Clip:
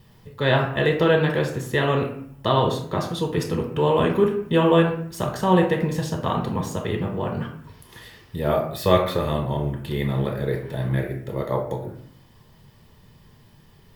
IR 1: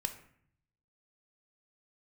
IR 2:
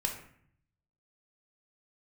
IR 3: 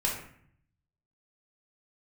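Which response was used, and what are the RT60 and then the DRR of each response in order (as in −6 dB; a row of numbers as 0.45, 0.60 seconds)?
2; 0.60, 0.60, 0.60 seconds; 6.0, 0.5, −4.0 decibels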